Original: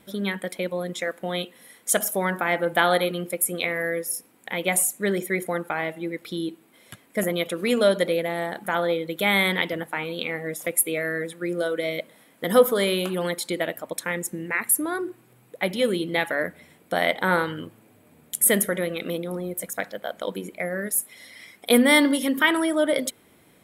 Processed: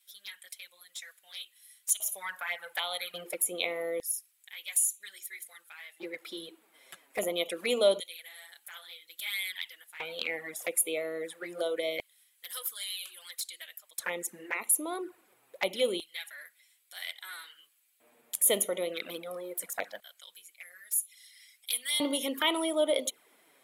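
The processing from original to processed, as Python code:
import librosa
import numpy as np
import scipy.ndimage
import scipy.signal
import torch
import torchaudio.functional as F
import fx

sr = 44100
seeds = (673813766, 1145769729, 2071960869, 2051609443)

y = fx.tone_stack(x, sr, knobs='10-0-10', at=(1.91, 3.14))
y = fx.filter_lfo_highpass(y, sr, shape='square', hz=0.25, low_hz=500.0, high_hz=3800.0, q=0.7)
y = fx.env_flanger(y, sr, rest_ms=9.3, full_db=-25.5)
y = y * librosa.db_to_amplitude(-1.0)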